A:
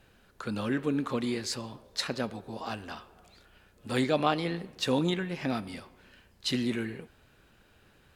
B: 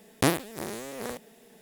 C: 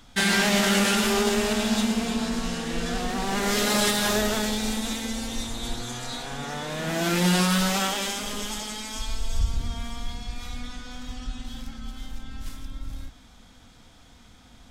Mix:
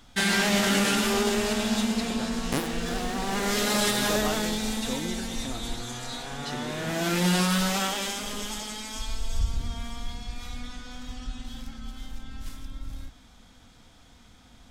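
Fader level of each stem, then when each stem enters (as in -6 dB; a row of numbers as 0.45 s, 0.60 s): -7.5 dB, -6.0 dB, -2.0 dB; 0.00 s, 2.30 s, 0.00 s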